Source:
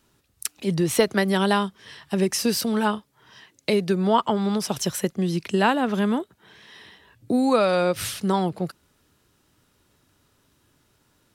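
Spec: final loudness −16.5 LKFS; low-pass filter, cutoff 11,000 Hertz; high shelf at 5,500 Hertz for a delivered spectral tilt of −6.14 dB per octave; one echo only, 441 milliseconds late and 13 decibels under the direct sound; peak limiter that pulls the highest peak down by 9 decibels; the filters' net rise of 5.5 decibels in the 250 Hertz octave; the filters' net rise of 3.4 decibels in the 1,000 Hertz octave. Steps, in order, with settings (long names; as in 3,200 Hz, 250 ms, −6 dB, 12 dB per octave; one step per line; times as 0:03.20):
low-pass filter 11,000 Hz
parametric band 250 Hz +7 dB
parametric band 1,000 Hz +4 dB
high-shelf EQ 5,500 Hz −8.5 dB
brickwall limiter −12 dBFS
single-tap delay 441 ms −13 dB
level +5.5 dB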